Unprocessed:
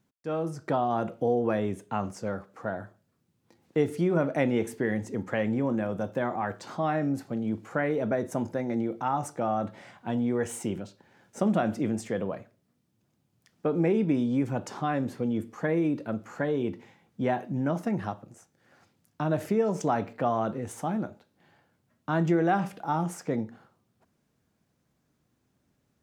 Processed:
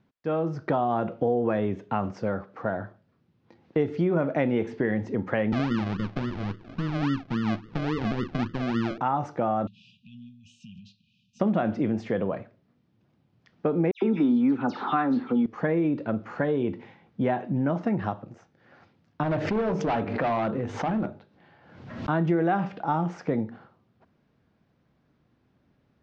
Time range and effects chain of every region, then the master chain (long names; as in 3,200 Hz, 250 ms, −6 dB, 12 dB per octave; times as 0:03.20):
0:05.52–0:08.98: lower of the sound and its delayed copy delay 0.39 ms + inverse Chebyshev low-pass filter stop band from 1,000 Hz, stop band 50 dB + sample-and-hold swept by an LFO 38×, swing 60% 3.6 Hz
0:09.67–0:11.40: low-shelf EQ 380 Hz −10 dB + downward compressor 5 to 1, threshold −43 dBFS + linear-phase brick-wall band-stop 240–2,400 Hz
0:13.91–0:15.46: loudspeaker in its box 220–6,700 Hz, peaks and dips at 250 Hz +9 dB, 580 Hz −7 dB, 850 Hz +6 dB, 1,300 Hz +10 dB, 4,000 Hz +8 dB + all-pass dispersion lows, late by 110 ms, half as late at 2,800 Hz
0:19.23–0:22.09: mains-hum notches 50/100/150/200/250/300/350/400/450 Hz + hard clipping −26.5 dBFS + background raised ahead of every attack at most 57 dB per second
whole clip: Bessel low-pass filter 3,100 Hz, order 8; downward compressor 2 to 1, threshold −30 dBFS; level +6 dB